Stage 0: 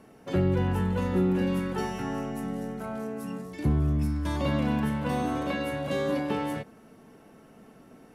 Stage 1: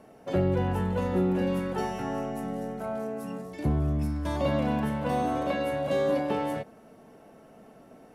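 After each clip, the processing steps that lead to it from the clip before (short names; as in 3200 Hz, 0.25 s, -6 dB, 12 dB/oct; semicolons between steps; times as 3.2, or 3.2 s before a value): bell 640 Hz +8 dB 0.83 oct; gain -2 dB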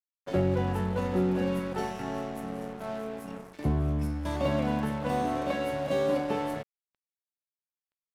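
crossover distortion -41.5 dBFS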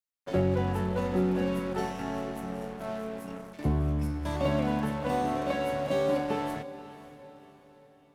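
diffused feedback echo 0.54 s, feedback 44%, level -15 dB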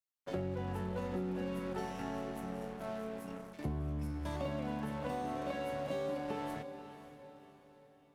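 compressor, threshold -29 dBFS, peak gain reduction 7.5 dB; gain -5 dB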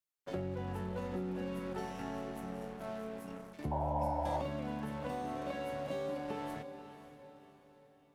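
painted sound noise, 3.71–4.42, 500–1000 Hz -35 dBFS; gain -1 dB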